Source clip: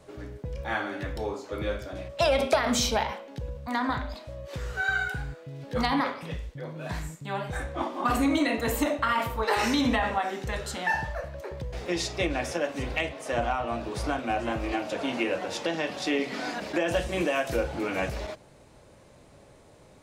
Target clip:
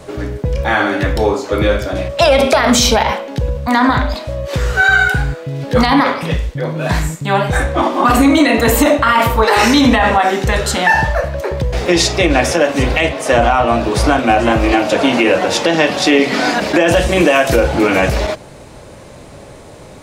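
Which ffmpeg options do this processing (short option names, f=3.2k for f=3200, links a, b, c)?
-af "alimiter=level_in=19dB:limit=-1dB:release=50:level=0:latency=1,volume=-1dB"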